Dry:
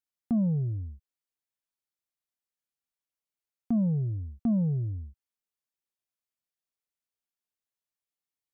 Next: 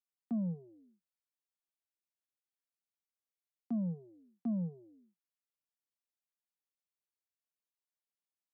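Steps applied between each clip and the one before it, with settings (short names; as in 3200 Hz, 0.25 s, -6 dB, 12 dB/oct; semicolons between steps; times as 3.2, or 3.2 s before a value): Chebyshev high-pass 170 Hz, order 6; gain -8 dB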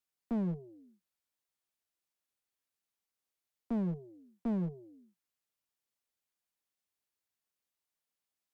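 one-sided clip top -39.5 dBFS, bottom -30.5 dBFS; gain +4.5 dB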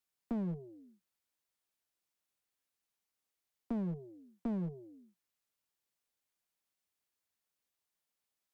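compressor, threshold -34 dBFS, peak gain reduction 4.5 dB; gain +1 dB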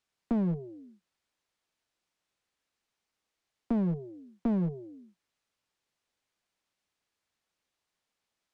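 air absorption 69 m; gain +8 dB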